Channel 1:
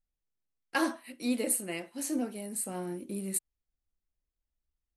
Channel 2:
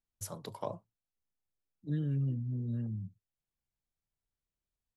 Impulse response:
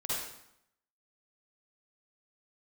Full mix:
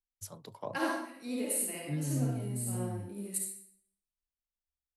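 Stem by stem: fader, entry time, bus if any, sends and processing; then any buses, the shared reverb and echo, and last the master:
−2.0 dB, 0.00 s, send −7.5 dB, automatic ducking −12 dB, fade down 0.90 s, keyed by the second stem
−1.5 dB, 0.00 s, no send, no processing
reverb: on, RT60 0.75 s, pre-delay 43 ms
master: multiband upward and downward expander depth 40%

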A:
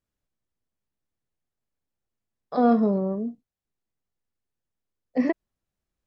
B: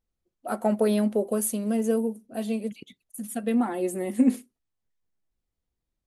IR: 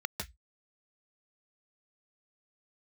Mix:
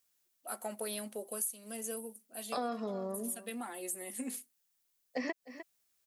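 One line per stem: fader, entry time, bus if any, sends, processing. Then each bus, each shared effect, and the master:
+1.5 dB, 0.00 s, no send, echo send −20.5 dB, no processing
−11.0 dB, 0.00 s, no send, no echo send, no processing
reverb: not used
echo: single-tap delay 302 ms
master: spectral tilt +4.5 dB per octave; downward compressor 5 to 1, threshold −34 dBFS, peak gain reduction 15 dB

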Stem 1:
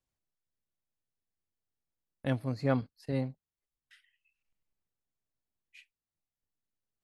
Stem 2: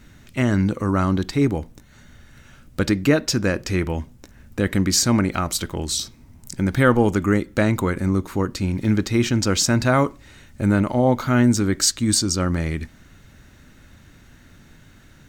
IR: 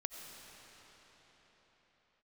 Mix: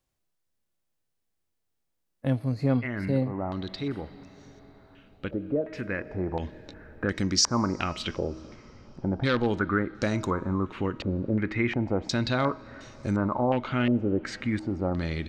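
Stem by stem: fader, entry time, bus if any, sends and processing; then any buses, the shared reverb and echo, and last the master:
+1.5 dB, 0.00 s, no send, harmonic and percussive parts rebalanced harmonic +9 dB
−6.0 dB, 2.45 s, send −18 dB, hum removal 317.4 Hz, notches 9; wave folding −7.5 dBFS; low-pass on a step sequencer 2.8 Hz 560–5,500 Hz; automatic ducking −9 dB, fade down 1.75 s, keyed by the first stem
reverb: on, pre-delay 50 ms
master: parametric band 410 Hz +2.5 dB 2.1 octaves; downward compressor 1.5 to 1, threshold −30 dBFS, peak gain reduction 7 dB

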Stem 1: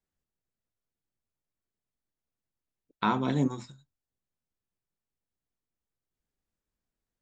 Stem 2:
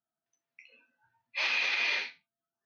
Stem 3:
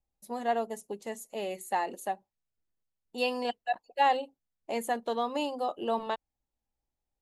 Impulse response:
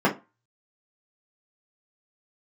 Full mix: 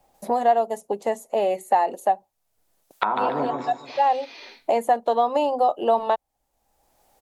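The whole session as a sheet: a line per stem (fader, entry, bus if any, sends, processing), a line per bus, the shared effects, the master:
+1.0 dB, 0.00 s, bus A, no send, echo send −9.5 dB, treble cut that deepens with the level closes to 1,300 Hz, closed at −27 dBFS; spectral tilt +4.5 dB per octave
−11.0 dB, 2.50 s, bus A, no send, no echo send, flat-topped bell 1,200 Hz −12 dB 2.8 octaves
+1.0 dB, 0.00 s, no bus, no send, no echo send, automatic ducking −12 dB, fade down 0.25 s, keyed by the first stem
bus A: 0.0 dB, noise gate with hold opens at −59 dBFS; downward compressor, threshold −31 dBFS, peak gain reduction 8.5 dB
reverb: not used
echo: repeating echo 144 ms, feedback 41%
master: parametric band 710 Hz +13 dB 1.5 octaves; multiband upward and downward compressor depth 70%

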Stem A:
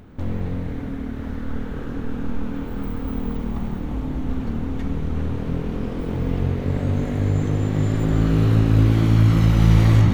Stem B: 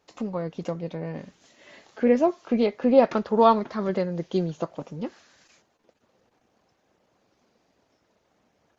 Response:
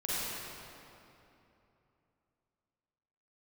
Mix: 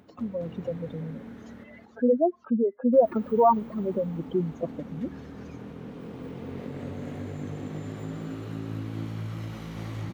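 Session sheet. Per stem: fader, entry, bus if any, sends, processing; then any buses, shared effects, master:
−7.5 dB, 0.00 s, muted 0:01.42–0:02.93, no send, echo send −5 dB, high-pass filter 150 Hz 12 dB per octave; downward compressor 6 to 1, threshold −26 dBFS, peak gain reduction 10.5 dB; automatic ducking −8 dB, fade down 0.30 s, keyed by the second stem
−1.0 dB, 0.00 s, no send, no echo send, expanding power law on the bin magnitudes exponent 2.7; pitch vibrato 0.65 Hz 38 cents; reverb reduction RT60 0.56 s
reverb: not used
echo: repeating echo 219 ms, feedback 48%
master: no processing

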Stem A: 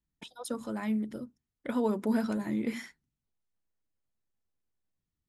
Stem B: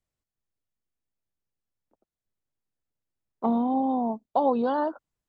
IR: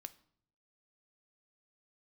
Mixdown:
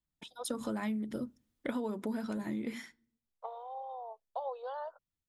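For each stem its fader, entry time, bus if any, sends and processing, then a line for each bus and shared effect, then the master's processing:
−6.0 dB, 0.00 s, send −15.5 dB, automatic gain control gain up to 12 dB; automatic ducking −18 dB, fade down 1.90 s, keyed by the second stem
−13.5 dB, 0.00 s, no send, Butterworth high-pass 460 Hz 72 dB per octave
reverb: on, RT60 0.60 s, pre-delay 3 ms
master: parametric band 3,500 Hz +3.5 dB 0.23 octaves; downward compressor 12 to 1, threshold −32 dBFS, peak gain reduction 12.5 dB

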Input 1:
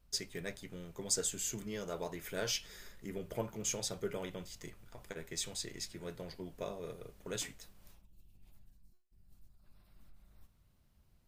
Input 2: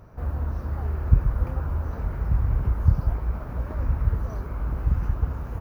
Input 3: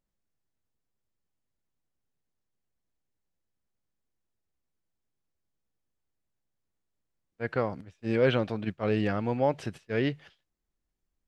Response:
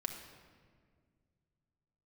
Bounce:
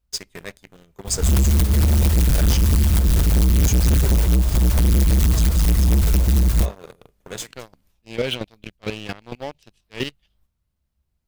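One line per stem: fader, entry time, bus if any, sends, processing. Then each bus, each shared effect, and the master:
−2.0 dB, 0.00 s, no bus, no send, log-companded quantiser 8 bits
+3.0 dB, 1.05 s, bus A, no send, low-shelf EQ 170 Hz +11 dB; noise that follows the level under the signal 12 dB
−4.5 dB, 0.00 s, bus A, no send, high shelf with overshoot 2,200 Hz +11.5 dB, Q 1.5; expander for the loud parts 1.5 to 1, over −35 dBFS
bus A: 0.0 dB, square-wave tremolo 4.4 Hz, depth 65%, duty 15%; downward compressor 3 to 1, threshold −21 dBFS, peak gain reduction 12.5 dB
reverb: not used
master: parametric band 64 Hz +11 dB 0.39 octaves; leveller curve on the samples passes 3; hard clipping −13.5 dBFS, distortion −11 dB

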